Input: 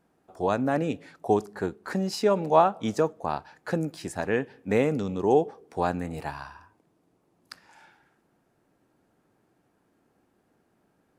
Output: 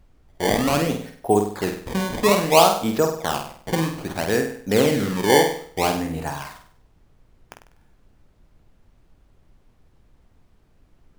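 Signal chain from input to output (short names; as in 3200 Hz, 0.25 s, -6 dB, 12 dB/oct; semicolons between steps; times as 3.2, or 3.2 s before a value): gate -45 dBFS, range -22 dB; decimation with a swept rate 19×, swing 160% 0.61 Hz; on a send: flutter echo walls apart 8.4 m, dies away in 0.52 s; on the sum: added noise brown -58 dBFS; gain +4 dB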